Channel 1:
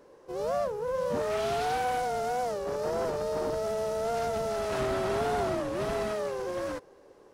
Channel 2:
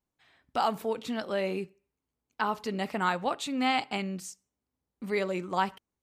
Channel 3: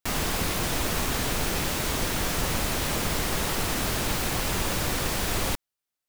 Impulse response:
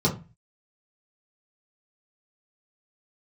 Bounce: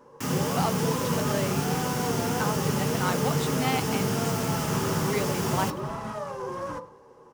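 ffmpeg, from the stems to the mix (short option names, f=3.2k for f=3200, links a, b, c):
-filter_complex "[0:a]equalizer=f=1k:w=2.7:g=11.5,alimiter=level_in=1dB:limit=-24dB:level=0:latency=1,volume=-1dB,volume=-0.5dB,asplit=3[a][b][c];[b]volume=-17.5dB[d];[c]volume=-22.5dB[e];[1:a]volume=-2dB,asplit=2[f][g];[2:a]highpass=140,adelay=150,volume=-4.5dB,asplit=3[h][i][j];[i]volume=-13dB[k];[j]volume=-22.5dB[l];[g]apad=whole_len=323565[m];[a][m]sidechaincompress=threshold=-36dB:ratio=8:attack=27:release=279[n];[3:a]atrim=start_sample=2205[o];[d][k]amix=inputs=2:normalize=0[p];[p][o]afir=irnorm=-1:irlink=0[q];[e][l]amix=inputs=2:normalize=0,aecho=0:1:104|208|312|416|520|624|728:1|0.49|0.24|0.118|0.0576|0.0282|0.0138[r];[n][f][h][q][r]amix=inputs=5:normalize=0"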